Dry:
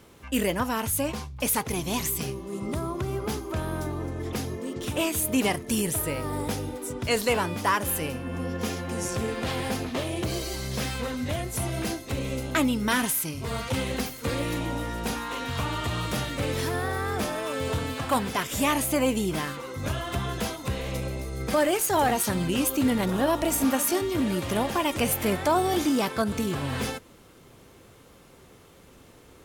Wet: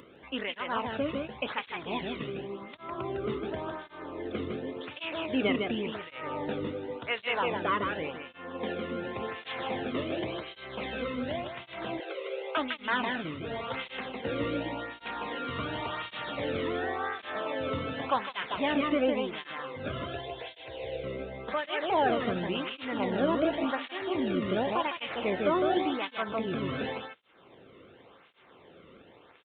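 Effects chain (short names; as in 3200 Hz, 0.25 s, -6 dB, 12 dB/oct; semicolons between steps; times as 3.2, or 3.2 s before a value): tracing distortion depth 0.031 ms; 20.05–21.04 fixed phaser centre 510 Hz, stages 4; in parallel at -4.5 dB: bit-crush 7-bit; on the sum: downsampling 8000 Hz; on a send: echo 0.156 s -4 dB; on the sum: upward compressor, threshold -37 dBFS; 12–12.57 steep high-pass 350 Hz 96 dB/oct; tape flanging out of phase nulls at 0.9 Hz, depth 1.3 ms; gain -5.5 dB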